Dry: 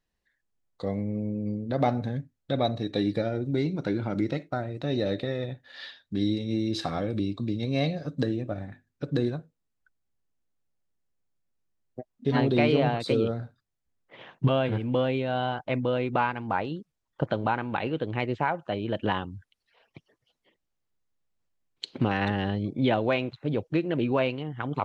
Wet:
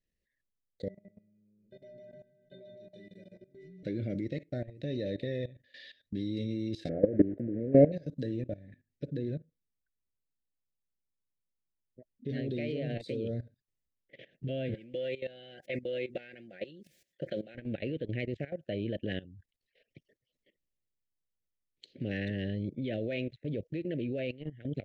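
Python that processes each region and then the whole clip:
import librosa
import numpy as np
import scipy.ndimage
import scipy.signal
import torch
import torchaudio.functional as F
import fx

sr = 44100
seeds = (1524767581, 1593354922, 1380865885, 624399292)

y = fx.chain(x, sr, fx.stiff_resonator(f0_hz=180.0, decay_s=0.71, stiffness=0.03),
    fx.echo_feedback(ms=153, feedback_pct=31, wet_db=-5.0), at=(0.88, 3.83))
y = fx.chain(y, sr, fx.block_float(bits=3),
    fx.lowpass(hz=1400.0, slope=24),
    fx.peak_eq(hz=480.0, db=13.5, octaves=2.7), at=(6.89, 7.92))
y = fx.chain(y, sr, fx.lowpass(hz=2600.0, slope=6),
    fx.peak_eq(hz=830.0, db=-14.0, octaves=0.35), at=(9.13, 12.29))
y = fx.chain(y, sr, fx.highpass(hz=660.0, slope=6),
    fx.comb(ms=5.6, depth=0.51),
    fx.sustainer(db_per_s=90.0), at=(14.74, 17.55))
y = scipy.signal.sosfilt(scipy.signal.cheby1(3, 1.0, [590.0, 1800.0], 'bandstop', fs=sr, output='sos'), y)
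y = fx.high_shelf(y, sr, hz=3000.0, db=-5.0)
y = fx.level_steps(y, sr, step_db=17)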